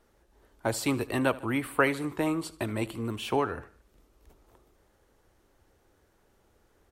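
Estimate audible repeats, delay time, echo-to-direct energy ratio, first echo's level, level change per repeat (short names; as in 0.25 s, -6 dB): 3, 75 ms, -18.5 dB, -20.0 dB, -4.5 dB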